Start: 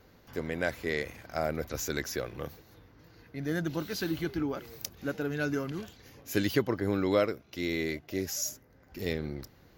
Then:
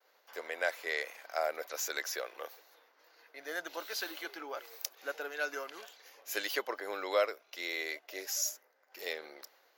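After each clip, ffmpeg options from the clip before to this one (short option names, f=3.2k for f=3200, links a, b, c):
-af "agate=range=-33dB:threshold=-54dB:ratio=3:detection=peak,highpass=f=540:w=0.5412,highpass=f=540:w=1.3066"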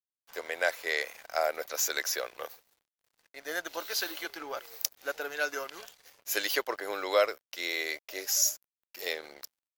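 -af "bass=f=250:g=1,treble=f=4k:g=4,aeval=exprs='sgn(val(0))*max(abs(val(0))-0.0015,0)':c=same,volume=4.5dB"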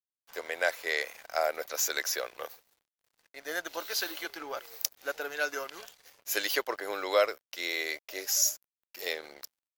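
-af anull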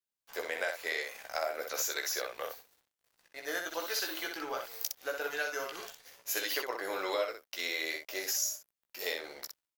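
-filter_complex "[0:a]acompressor=threshold=-32dB:ratio=5,asplit=2[a][b];[b]aecho=0:1:16|62:0.531|0.562[c];[a][c]amix=inputs=2:normalize=0"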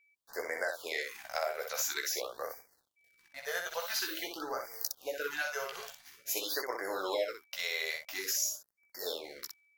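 -af "aeval=exprs='val(0)+0.000447*sin(2*PI*2300*n/s)':c=same,afftfilt=real='re*(1-between(b*sr/1024,260*pow(3300/260,0.5+0.5*sin(2*PI*0.48*pts/sr))/1.41,260*pow(3300/260,0.5+0.5*sin(2*PI*0.48*pts/sr))*1.41))':imag='im*(1-between(b*sr/1024,260*pow(3300/260,0.5+0.5*sin(2*PI*0.48*pts/sr))/1.41,260*pow(3300/260,0.5+0.5*sin(2*PI*0.48*pts/sr))*1.41))':win_size=1024:overlap=0.75"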